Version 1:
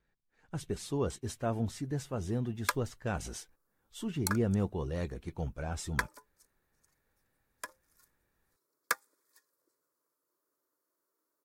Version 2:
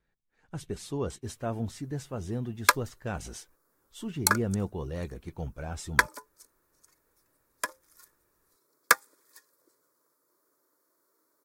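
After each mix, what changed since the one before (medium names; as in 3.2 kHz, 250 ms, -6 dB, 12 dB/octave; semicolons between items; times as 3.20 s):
background +10.5 dB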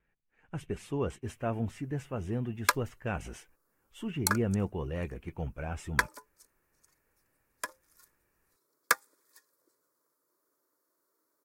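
speech: add resonant high shelf 3.3 kHz -6.5 dB, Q 3; background -5.0 dB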